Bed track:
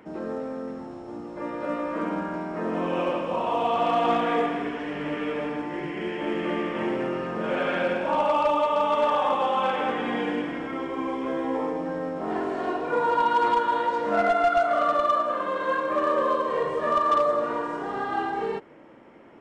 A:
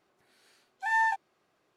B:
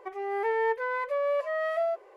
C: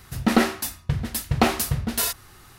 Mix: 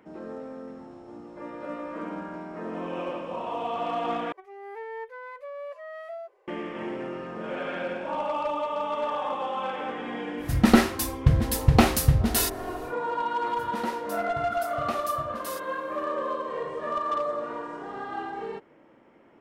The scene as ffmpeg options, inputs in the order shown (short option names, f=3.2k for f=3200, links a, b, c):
-filter_complex "[3:a]asplit=2[a][b];[0:a]volume=-6.5dB[c];[a]lowshelf=f=140:g=10.5[d];[b]highpass=73[e];[c]asplit=2[f][g];[f]atrim=end=4.324[h];[2:a]atrim=end=2.16,asetpts=PTS-STARTPTS,volume=-10.5dB[i];[g]atrim=start=6.476[j];[d]atrim=end=2.58,asetpts=PTS-STARTPTS,volume=-1dB,afade=t=in:d=0.1,afade=t=out:st=2.48:d=0.1,adelay=10370[k];[e]atrim=end=2.58,asetpts=PTS-STARTPTS,volume=-16dB,afade=t=in:d=0.004:c=hsin,afade=t=out:st=2.576:d=0.004:c=hsin,adelay=13470[l];[h][i]acrossfade=d=0.004:c1=hsin:c2=hsin[m];[m][j]acrossfade=d=0.004:c1=hsin:c2=hsin[n];[n][k][l]amix=inputs=3:normalize=0"